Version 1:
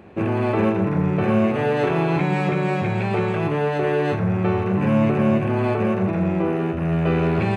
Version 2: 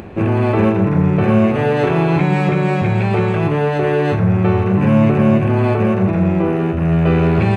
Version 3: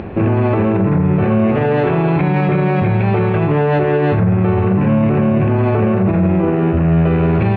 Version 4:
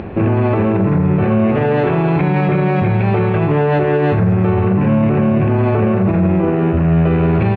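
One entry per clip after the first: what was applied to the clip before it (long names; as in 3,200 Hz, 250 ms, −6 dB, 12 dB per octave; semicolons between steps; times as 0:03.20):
low-shelf EQ 97 Hz +10 dB; upward compression, threshold −31 dBFS; level +4 dB
brickwall limiter −13 dBFS, peak gain reduction 11 dB; high-frequency loss of the air 270 metres; level +6.5 dB
far-end echo of a speakerphone 360 ms, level −19 dB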